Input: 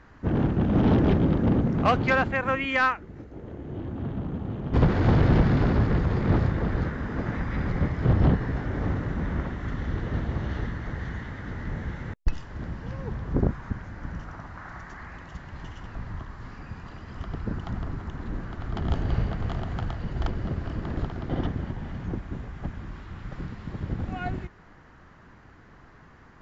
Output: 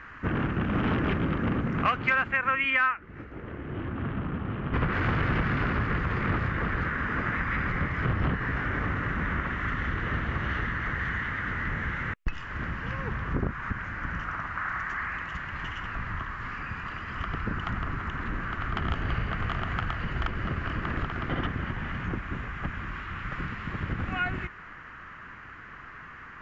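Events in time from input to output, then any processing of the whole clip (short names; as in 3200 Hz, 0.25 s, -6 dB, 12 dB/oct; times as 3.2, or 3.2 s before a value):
2.7–4.93 air absorption 120 m
whole clip: band shelf 1800 Hz +13 dB; compressor 3:1, threshold -26 dBFS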